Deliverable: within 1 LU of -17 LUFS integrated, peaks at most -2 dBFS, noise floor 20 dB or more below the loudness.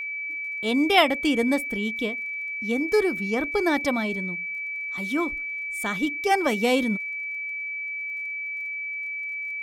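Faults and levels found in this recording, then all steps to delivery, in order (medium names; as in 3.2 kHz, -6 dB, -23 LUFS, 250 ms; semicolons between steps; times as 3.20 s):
tick rate 20 per s; steady tone 2.3 kHz; tone level -29 dBFS; loudness -25.0 LUFS; peak level -6.0 dBFS; loudness target -17.0 LUFS
-> de-click; band-stop 2.3 kHz, Q 30; trim +8 dB; peak limiter -2 dBFS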